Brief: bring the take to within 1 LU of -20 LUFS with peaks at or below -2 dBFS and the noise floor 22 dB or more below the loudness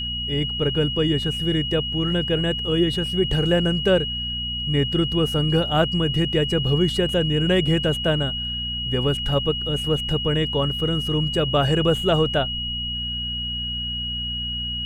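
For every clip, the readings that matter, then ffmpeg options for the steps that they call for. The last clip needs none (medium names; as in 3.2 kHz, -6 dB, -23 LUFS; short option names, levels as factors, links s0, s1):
hum 60 Hz; highest harmonic 240 Hz; hum level -31 dBFS; steady tone 2.9 kHz; tone level -26 dBFS; loudness -21.5 LUFS; peak level -6.5 dBFS; loudness target -20.0 LUFS
-> -af "bandreject=f=60:t=h:w=4,bandreject=f=120:t=h:w=4,bandreject=f=180:t=h:w=4,bandreject=f=240:t=h:w=4"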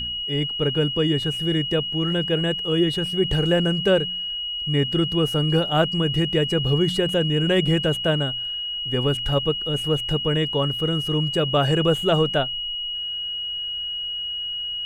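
hum not found; steady tone 2.9 kHz; tone level -26 dBFS
-> -af "bandreject=f=2900:w=30"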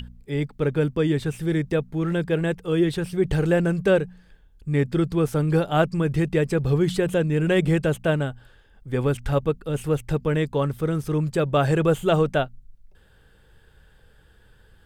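steady tone not found; loudness -23.5 LUFS; peak level -7.0 dBFS; loudness target -20.0 LUFS
-> -af "volume=1.5"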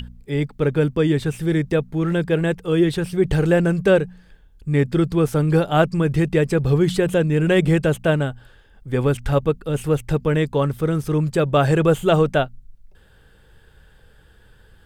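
loudness -20.0 LUFS; peak level -3.5 dBFS; noise floor -52 dBFS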